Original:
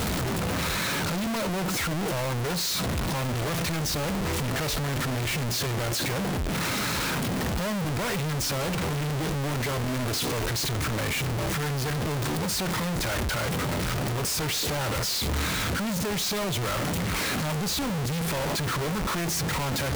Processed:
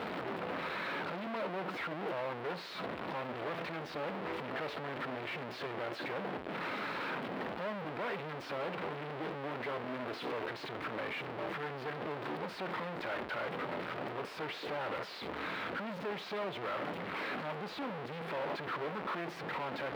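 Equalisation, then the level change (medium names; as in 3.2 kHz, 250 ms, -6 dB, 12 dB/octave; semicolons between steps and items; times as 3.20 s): high-pass 350 Hz 12 dB/octave; distance through air 430 m; -4.5 dB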